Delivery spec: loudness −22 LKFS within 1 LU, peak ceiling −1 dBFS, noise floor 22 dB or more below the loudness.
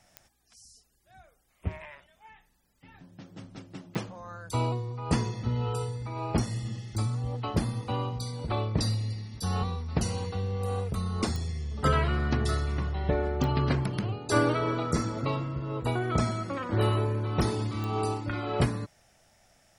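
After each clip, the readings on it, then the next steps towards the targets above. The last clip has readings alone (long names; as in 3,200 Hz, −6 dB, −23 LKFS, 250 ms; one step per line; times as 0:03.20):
number of clicks 5; integrated loudness −30.0 LKFS; sample peak −11.5 dBFS; target loudness −22.0 LKFS
→ click removal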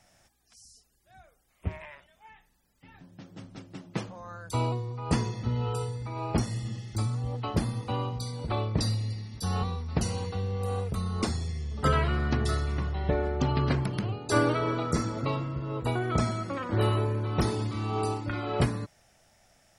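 number of clicks 0; integrated loudness −30.0 LKFS; sample peak −11.5 dBFS; target loudness −22.0 LKFS
→ level +8 dB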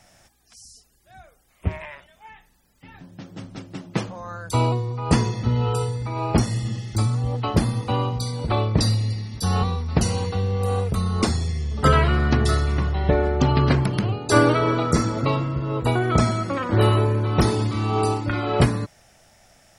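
integrated loudness −22.0 LKFS; sample peak −3.5 dBFS; background noise floor −60 dBFS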